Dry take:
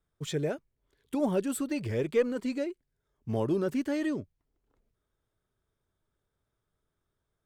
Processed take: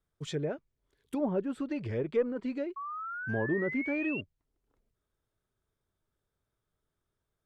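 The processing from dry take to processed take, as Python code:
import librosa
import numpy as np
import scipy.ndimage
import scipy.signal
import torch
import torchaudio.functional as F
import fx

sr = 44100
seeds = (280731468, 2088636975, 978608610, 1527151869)

y = fx.env_lowpass_down(x, sr, base_hz=1500.0, full_db=-25.0)
y = fx.spec_paint(y, sr, seeds[0], shape='rise', start_s=2.76, length_s=1.45, low_hz=1100.0, high_hz=2800.0, level_db=-36.0)
y = y * librosa.db_to_amplitude(-2.5)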